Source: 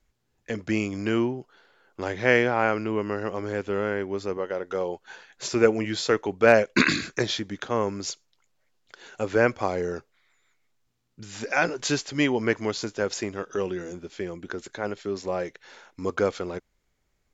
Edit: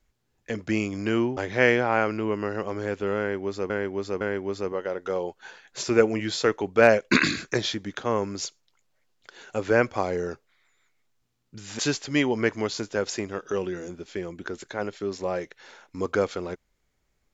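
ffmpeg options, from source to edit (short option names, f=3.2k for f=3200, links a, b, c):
-filter_complex "[0:a]asplit=5[a][b][c][d][e];[a]atrim=end=1.372[f];[b]atrim=start=2.038:end=4.372[g];[c]atrim=start=3.858:end=4.372[h];[d]atrim=start=3.858:end=11.442[i];[e]atrim=start=11.828[j];[f][g]acrossfade=d=0.004:c1=hsin:c2=hsin[k];[k][h]acrossfade=d=0.004:c1=hsin:c2=hsin[l];[l][i]acrossfade=d=0.004:c1=hsin:c2=hsin[m];[m][j]acrossfade=d=0.004:c1=hsin:c2=hsin"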